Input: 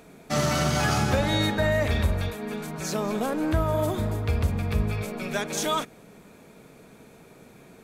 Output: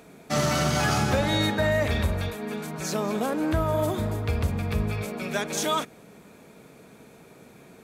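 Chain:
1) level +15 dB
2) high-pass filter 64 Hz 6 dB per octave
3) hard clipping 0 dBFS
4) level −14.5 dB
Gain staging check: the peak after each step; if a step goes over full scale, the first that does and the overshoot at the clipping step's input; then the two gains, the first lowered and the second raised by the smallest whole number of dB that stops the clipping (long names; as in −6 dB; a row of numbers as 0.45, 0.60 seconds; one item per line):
+4.5, +4.0, 0.0, −14.5 dBFS
step 1, 4.0 dB
step 1 +11 dB, step 4 −10.5 dB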